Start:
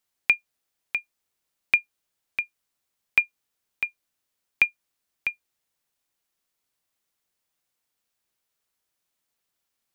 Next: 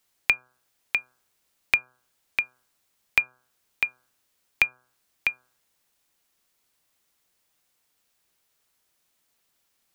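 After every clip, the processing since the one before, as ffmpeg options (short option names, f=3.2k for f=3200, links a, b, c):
-filter_complex "[0:a]acrossover=split=180[a][b];[b]acompressor=threshold=-33dB:ratio=2[c];[a][c]amix=inputs=2:normalize=0,bandreject=f=126.2:t=h:w=4,bandreject=f=252.4:t=h:w=4,bandreject=f=378.6:t=h:w=4,bandreject=f=504.8:t=h:w=4,bandreject=f=631:t=h:w=4,bandreject=f=757.2:t=h:w=4,bandreject=f=883.4:t=h:w=4,bandreject=f=1.0096k:t=h:w=4,bandreject=f=1.1358k:t=h:w=4,bandreject=f=1.262k:t=h:w=4,bandreject=f=1.3882k:t=h:w=4,bandreject=f=1.5144k:t=h:w=4,bandreject=f=1.6406k:t=h:w=4,volume=8dB"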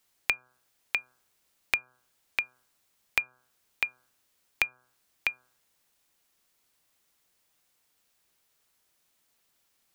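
-af "acompressor=threshold=-27dB:ratio=2"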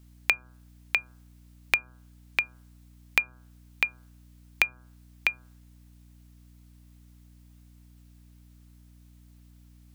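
-af "aeval=exprs='val(0)+0.00158*(sin(2*PI*60*n/s)+sin(2*PI*2*60*n/s)/2+sin(2*PI*3*60*n/s)/3+sin(2*PI*4*60*n/s)/4+sin(2*PI*5*60*n/s)/5)':c=same,volume=3.5dB"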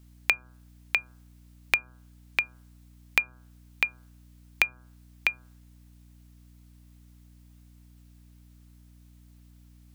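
-af anull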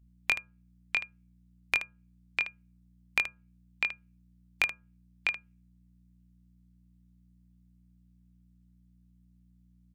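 -filter_complex "[0:a]afftdn=nr=20:nf=-49,asplit=2[a][b];[b]aecho=0:1:22|77:0.596|0.266[c];[a][c]amix=inputs=2:normalize=0,volume=-5.5dB"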